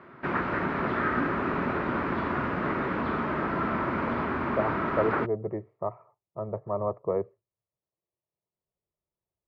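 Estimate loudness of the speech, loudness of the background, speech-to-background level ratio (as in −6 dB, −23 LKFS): −32.0 LKFS, −29.0 LKFS, −3.0 dB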